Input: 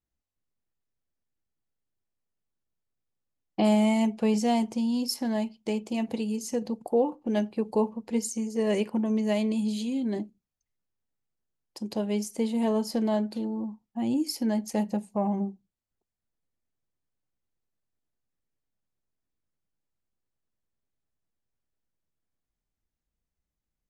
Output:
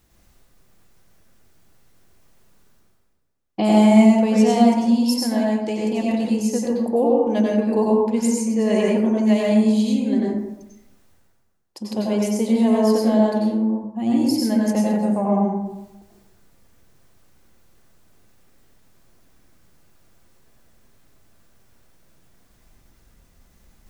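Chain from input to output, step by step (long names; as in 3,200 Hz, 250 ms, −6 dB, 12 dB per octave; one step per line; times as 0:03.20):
reversed playback
upward compression, threshold −42 dBFS
reversed playback
dense smooth reverb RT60 0.94 s, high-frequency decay 0.4×, pre-delay 80 ms, DRR −4 dB
level +3 dB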